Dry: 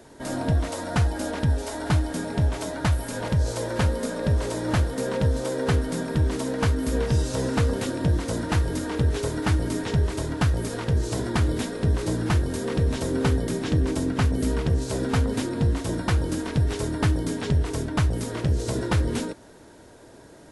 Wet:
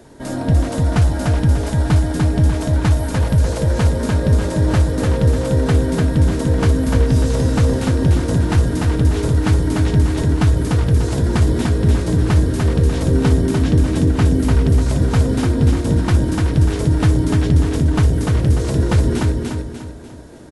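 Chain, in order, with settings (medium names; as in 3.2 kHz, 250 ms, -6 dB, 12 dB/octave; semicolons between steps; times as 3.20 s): bass shelf 320 Hz +6.5 dB; feedback delay 296 ms, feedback 41%, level -3 dB; trim +2 dB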